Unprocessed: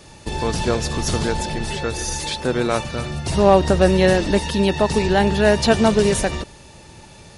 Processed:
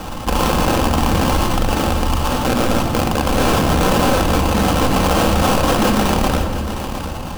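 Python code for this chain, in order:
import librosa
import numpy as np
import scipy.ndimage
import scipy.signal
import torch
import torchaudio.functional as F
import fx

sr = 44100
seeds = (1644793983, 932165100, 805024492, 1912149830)

p1 = fx.rattle_buzz(x, sr, strikes_db=-25.0, level_db=-7.0)
p2 = scipy.signal.sosfilt(scipy.signal.butter(12, 5300.0, 'lowpass', fs=sr, output='sos'), p1)
p3 = fx.peak_eq(p2, sr, hz=120.0, db=-6.5, octaves=2.4)
p4 = fx.notch(p3, sr, hz=1900.0, q=8.9)
p5 = p4 + 0.83 * np.pad(p4, (int(1.1 * sr / 1000.0), 0))[:len(p4)]
p6 = fx.sample_hold(p5, sr, seeds[0], rate_hz=2000.0, jitter_pct=20)
p7 = (np.mod(10.0 ** (12.5 / 20.0) * p6 + 1.0, 2.0) - 1.0) / 10.0 ** (12.5 / 20.0)
p8 = p7 + fx.echo_single(p7, sr, ms=709, db=-18.0, dry=0)
p9 = fx.room_shoebox(p8, sr, seeds[1], volume_m3=3300.0, walls='furnished', distance_m=2.1)
y = fx.env_flatten(p9, sr, amount_pct=50)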